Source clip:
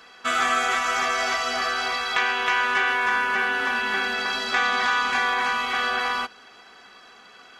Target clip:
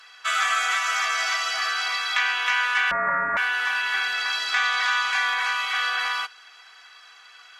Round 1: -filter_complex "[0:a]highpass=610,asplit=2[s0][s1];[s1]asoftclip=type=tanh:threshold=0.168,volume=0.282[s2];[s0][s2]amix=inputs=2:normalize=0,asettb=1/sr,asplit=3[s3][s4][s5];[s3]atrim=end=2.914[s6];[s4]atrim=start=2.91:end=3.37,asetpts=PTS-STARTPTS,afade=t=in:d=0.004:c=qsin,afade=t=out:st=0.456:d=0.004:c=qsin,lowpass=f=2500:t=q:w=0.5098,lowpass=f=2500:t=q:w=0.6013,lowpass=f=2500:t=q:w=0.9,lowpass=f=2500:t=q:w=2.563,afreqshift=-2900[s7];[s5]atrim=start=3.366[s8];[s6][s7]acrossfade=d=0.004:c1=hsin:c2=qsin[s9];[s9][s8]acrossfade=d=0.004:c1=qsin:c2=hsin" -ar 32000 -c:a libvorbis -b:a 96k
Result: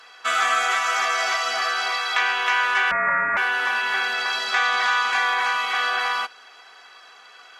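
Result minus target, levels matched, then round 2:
500 Hz band +4.0 dB
-filter_complex "[0:a]highpass=1300,asplit=2[s0][s1];[s1]asoftclip=type=tanh:threshold=0.168,volume=0.282[s2];[s0][s2]amix=inputs=2:normalize=0,asettb=1/sr,asplit=3[s3][s4][s5];[s3]atrim=end=2.914[s6];[s4]atrim=start=2.91:end=3.37,asetpts=PTS-STARTPTS,afade=t=in:d=0.004:c=qsin,afade=t=out:st=0.456:d=0.004:c=qsin,lowpass=f=2500:t=q:w=0.5098,lowpass=f=2500:t=q:w=0.6013,lowpass=f=2500:t=q:w=0.9,lowpass=f=2500:t=q:w=2.563,afreqshift=-2900[s7];[s5]atrim=start=3.366[s8];[s6][s7]acrossfade=d=0.004:c1=hsin:c2=qsin[s9];[s9][s8]acrossfade=d=0.004:c1=qsin:c2=hsin" -ar 32000 -c:a libvorbis -b:a 96k

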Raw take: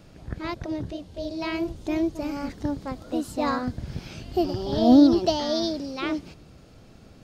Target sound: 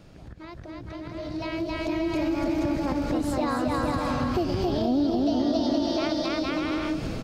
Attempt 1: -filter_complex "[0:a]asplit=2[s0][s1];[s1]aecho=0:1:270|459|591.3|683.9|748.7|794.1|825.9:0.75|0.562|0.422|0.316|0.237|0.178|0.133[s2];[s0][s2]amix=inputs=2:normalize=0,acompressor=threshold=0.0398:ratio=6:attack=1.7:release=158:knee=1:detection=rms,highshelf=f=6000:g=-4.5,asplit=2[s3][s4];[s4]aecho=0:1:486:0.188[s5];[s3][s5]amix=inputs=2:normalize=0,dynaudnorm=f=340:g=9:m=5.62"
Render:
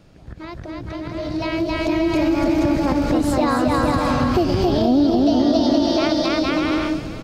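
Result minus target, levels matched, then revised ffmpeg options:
compression: peak gain reduction -8 dB
-filter_complex "[0:a]asplit=2[s0][s1];[s1]aecho=0:1:270|459|591.3|683.9|748.7|794.1|825.9:0.75|0.562|0.422|0.316|0.237|0.178|0.133[s2];[s0][s2]amix=inputs=2:normalize=0,acompressor=threshold=0.0133:ratio=6:attack=1.7:release=158:knee=1:detection=rms,highshelf=f=6000:g=-4.5,asplit=2[s3][s4];[s4]aecho=0:1:486:0.188[s5];[s3][s5]amix=inputs=2:normalize=0,dynaudnorm=f=340:g=9:m=5.62"

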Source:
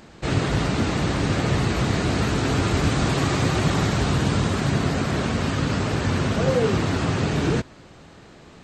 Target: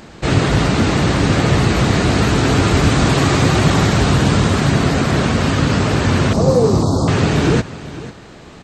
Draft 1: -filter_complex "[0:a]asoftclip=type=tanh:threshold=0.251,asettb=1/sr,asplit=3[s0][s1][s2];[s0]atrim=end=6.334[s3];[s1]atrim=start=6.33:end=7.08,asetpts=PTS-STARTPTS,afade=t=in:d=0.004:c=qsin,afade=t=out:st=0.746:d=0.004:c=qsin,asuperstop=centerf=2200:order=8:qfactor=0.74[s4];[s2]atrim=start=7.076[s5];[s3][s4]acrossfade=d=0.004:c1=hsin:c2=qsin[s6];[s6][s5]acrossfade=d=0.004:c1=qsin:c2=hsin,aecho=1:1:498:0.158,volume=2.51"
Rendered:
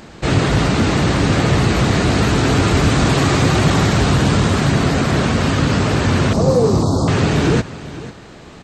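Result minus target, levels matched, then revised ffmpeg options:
saturation: distortion +10 dB
-filter_complex "[0:a]asoftclip=type=tanh:threshold=0.501,asettb=1/sr,asplit=3[s0][s1][s2];[s0]atrim=end=6.334[s3];[s1]atrim=start=6.33:end=7.08,asetpts=PTS-STARTPTS,afade=t=in:d=0.004:c=qsin,afade=t=out:st=0.746:d=0.004:c=qsin,asuperstop=centerf=2200:order=8:qfactor=0.74[s4];[s2]atrim=start=7.076[s5];[s3][s4]acrossfade=d=0.004:c1=hsin:c2=qsin[s6];[s6][s5]acrossfade=d=0.004:c1=qsin:c2=hsin,aecho=1:1:498:0.158,volume=2.51"

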